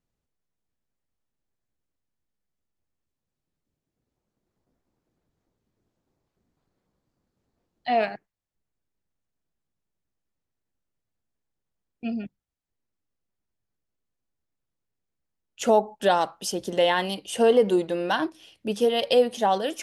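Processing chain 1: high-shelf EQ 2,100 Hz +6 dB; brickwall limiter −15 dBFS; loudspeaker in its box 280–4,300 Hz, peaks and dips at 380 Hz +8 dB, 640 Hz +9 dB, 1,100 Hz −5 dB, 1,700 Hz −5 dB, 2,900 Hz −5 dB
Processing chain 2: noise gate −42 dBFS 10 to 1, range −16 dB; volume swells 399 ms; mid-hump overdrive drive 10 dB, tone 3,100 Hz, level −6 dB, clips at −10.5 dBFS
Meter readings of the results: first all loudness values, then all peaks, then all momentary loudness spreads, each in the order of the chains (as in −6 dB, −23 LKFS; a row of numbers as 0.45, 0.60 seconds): −23.5, −28.5 LKFS; −8.0, −11.5 dBFS; 14, 19 LU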